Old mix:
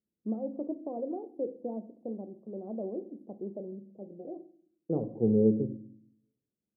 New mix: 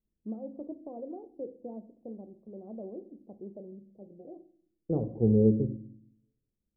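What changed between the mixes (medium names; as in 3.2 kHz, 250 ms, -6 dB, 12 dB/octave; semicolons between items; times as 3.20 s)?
first voice -5.5 dB; master: remove high-pass 160 Hz 12 dB/octave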